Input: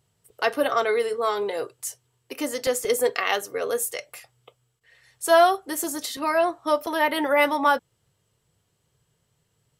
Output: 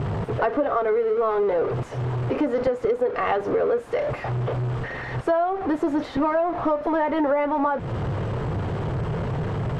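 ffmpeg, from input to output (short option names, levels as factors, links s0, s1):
-af "aeval=exprs='val(0)+0.5*0.0631*sgn(val(0))':c=same,lowpass=1100,acompressor=threshold=0.0562:ratio=16,volume=2.11"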